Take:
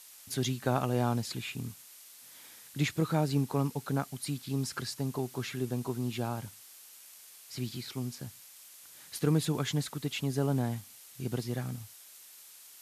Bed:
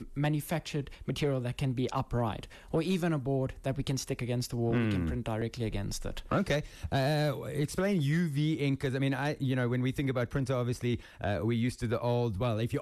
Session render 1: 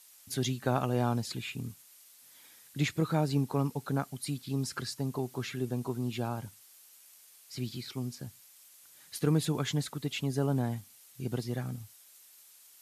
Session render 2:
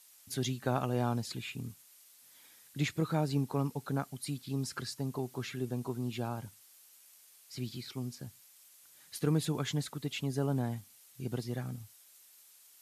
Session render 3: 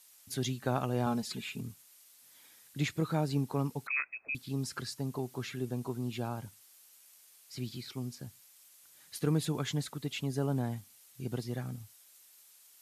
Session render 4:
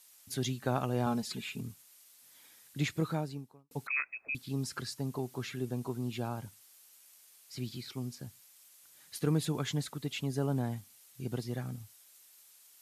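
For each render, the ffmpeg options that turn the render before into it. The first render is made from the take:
-af "afftdn=nr=6:nf=-53"
-af "volume=-2.5dB"
-filter_complex "[0:a]asettb=1/sr,asplit=3[a][b][c];[a]atrim=end=1.064[d];[b]atrim=start=1.06:end=1.61,asetpts=PTS-STARTPTS,afade=t=in:d=0.004:c=qsin,afade=t=out:st=0.546:d=0.004:c=qsin,aecho=1:1:4.7:0.65,atrim=end_sample=24255[e];[c]atrim=start=1.606[f];[d][e]acrossfade=d=0.004:c1=hsin:c2=qsin[g];[g][f]acrossfade=d=0.004:c1=qsin:c2=hsin,asettb=1/sr,asplit=3[h][i][j];[h]atrim=end=3.874[k];[i]atrim=start=3.87:end=4.35,asetpts=PTS-STARTPTS,afade=t=in:d=0.004:c=qsin,afade=t=out:st=0.476:d=0.004:c=qsin,lowpass=f=2.3k:t=q:w=0.5098,lowpass=f=2.3k:t=q:w=0.6013,lowpass=f=2.3k:t=q:w=0.9,lowpass=f=2.3k:t=q:w=2.563,afreqshift=-2700[l];[j]atrim=start=4.346[m];[k][l]acrossfade=d=0.004:c1=hsin:c2=qsin[n];[n][m]acrossfade=d=0.004:c1=qsin:c2=hsin"
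-filter_complex "[0:a]asplit=2[a][b];[a]atrim=end=3.71,asetpts=PTS-STARTPTS,afade=t=out:st=3.07:d=0.64:c=qua[c];[b]atrim=start=3.71,asetpts=PTS-STARTPTS,afade=t=in:d=0.004:c=hsin[d];[c][d]concat=n=2:v=0:a=1"

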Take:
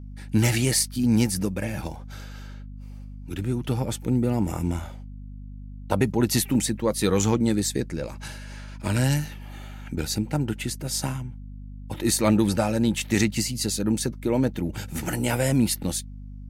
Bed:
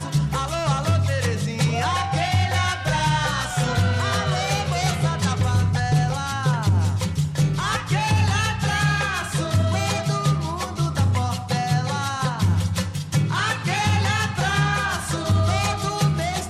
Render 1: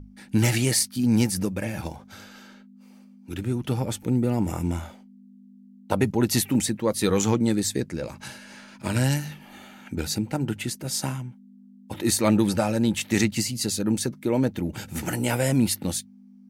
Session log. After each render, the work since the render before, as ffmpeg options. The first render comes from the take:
-af "bandreject=f=50:t=h:w=6,bandreject=f=100:t=h:w=6,bandreject=f=150:t=h:w=6"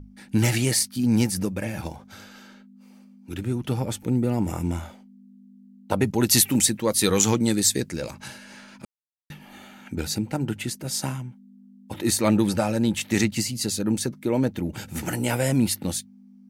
-filter_complex "[0:a]asettb=1/sr,asplit=3[a][b][c];[a]atrim=end=6.134[d];[b]atrim=start=6.13:end=8.11,asetpts=PTS-STARTPTS,afade=t=in:d=0.004:c=qsin,afade=t=out:st=1.976:d=0.004:c=qsin,highshelf=f=2.6k:g=9[e];[c]atrim=start=8.106[f];[d][e]acrossfade=d=0.004:c1=hsin:c2=qsin[g];[g][f]acrossfade=d=0.004:c1=qsin:c2=hsin,asplit=3[h][i][j];[h]atrim=end=8.85,asetpts=PTS-STARTPTS,afade=t=out:st=8.846:d=0.004:c=hsin[k];[i]atrim=start=8.85:end=9.3,asetpts=PTS-STARTPTS,volume=0[l];[j]atrim=start=9.3,asetpts=PTS-STARTPTS,afade=t=in:d=0.004:c=hsin[m];[k][l][m]concat=n=3:v=0:a=1"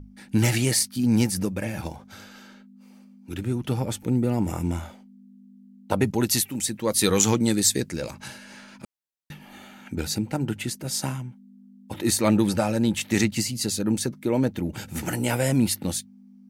-filter_complex "[0:a]asplit=3[a][b][c];[a]atrim=end=6.5,asetpts=PTS-STARTPTS,afade=t=out:st=6.11:d=0.39:silence=0.334965[d];[b]atrim=start=6.5:end=6.58,asetpts=PTS-STARTPTS,volume=-9.5dB[e];[c]atrim=start=6.58,asetpts=PTS-STARTPTS,afade=t=in:d=0.39:silence=0.334965[f];[d][e][f]concat=n=3:v=0:a=1"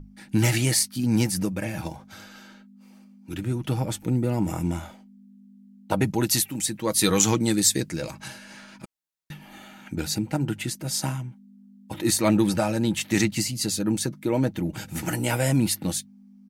-af "equalizer=f=460:t=o:w=0.22:g=-5,aecho=1:1:6.3:0.32"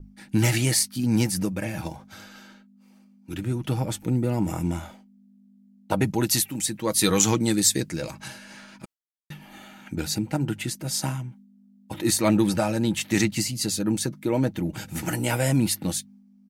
-af "agate=range=-33dB:threshold=-46dB:ratio=3:detection=peak"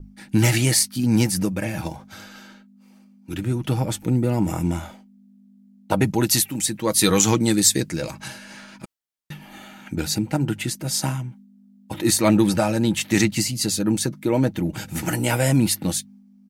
-af "volume=3.5dB,alimiter=limit=-3dB:level=0:latency=1"

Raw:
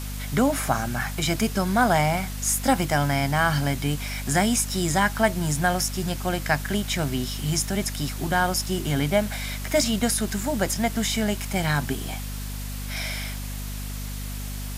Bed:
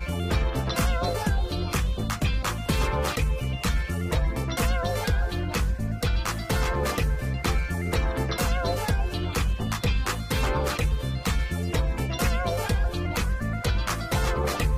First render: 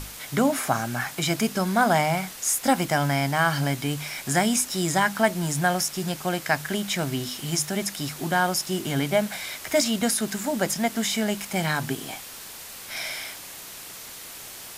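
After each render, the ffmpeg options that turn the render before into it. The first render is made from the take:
-af "bandreject=f=50:t=h:w=6,bandreject=f=100:t=h:w=6,bandreject=f=150:t=h:w=6,bandreject=f=200:t=h:w=6,bandreject=f=250:t=h:w=6"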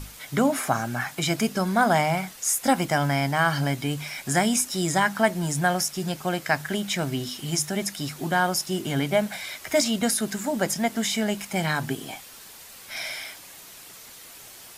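-af "afftdn=nr=6:nf=-41"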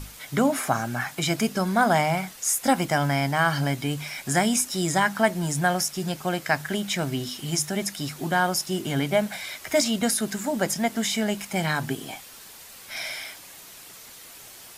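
-af anull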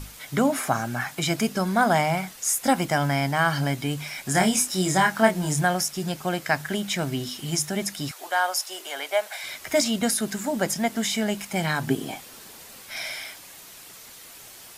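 -filter_complex "[0:a]asettb=1/sr,asplit=3[a][b][c];[a]atrim=end=4.324[d];[b]atrim=start=4.32:end=5.65,asetpts=PTS-STARTPTS,afade=t=in:d=0.004:c=qsin,afade=t=out:st=1.326:d=0.004:c=qsin,asplit=2[e][f];[f]adelay=27,volume=-4dB[g];[e][g]amix=inputs=2:normalize=0,atrim=end_sample=58653[h];[c]atrim=start=5.646[i];[d][h]acrossfade=d=0.004:c1=hsin:c2=qsin[j];[j][i]acrossfade=d=0.004:c1=qsin:c2=hsin,asettb=1/sr,asplit=3[k][l][m];[k]atrim=end=8.114[n];[l]atrim=start=8.11:end=9.44,asetpts=PTS-STARTPTS,afade=t=in:d=0.004:c=qsin,afade=t=out:st=1.326:d=0.004:c=qsin,highpass=f=540:w=0.5412,highpass=f=540:w=1.3066[o];[m]atrim=start=9.436[p];[n][o]acrossfade=d=0.004:c1=hsin:c2=qsin[q];[q][p]acrossfade=d=0.004:c1=qsin:c2=hsin,asettb=1/sr,asplit=3[r][s][t];[r]atrim=end=11.874[u];[s]atrim=start=11.87:end=12.82,asetpts=PTS-STARTPTS,afade=t=in:d=0.004:c=qsin,afade=t=out:st=0.946:d=0.004:c=qsin,equalizer=f=280:w=0.46:g=6.5[v];[t]atrim=start=12.816[w];[u][v]acrossfade=d=0.004:c1=hsin:c2=qsin[x];[x][w]acrossfade=d=0.004:c1=qsin:c2=hsin"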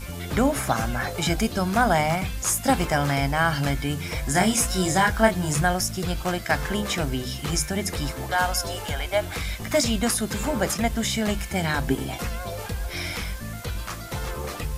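-filter_complex "[1:a]volume=-6dB[a];[0:a][a]amix=inputs=2:normalize=0"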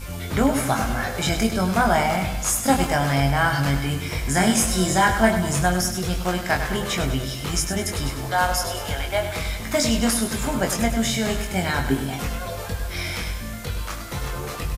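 -filter_complex "[0:a]asplit=2[a][b];[b]adelay=22,volume=-5dB[c];[a][c]amix=inputs=2:normalize=0,asplit=2[d][e];[e]aecho=0:1:100|200|300|400|500|600:0.355|0.195|0.107|0.059|0.0325|0.0179[f];[d][f]amix=inputs=2:normalize=0"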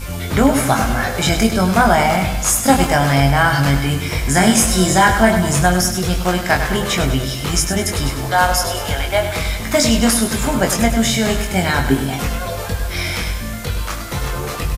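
-af "volume=6.5dB,alimiter=limit=-1dB:level=0:latency=1"

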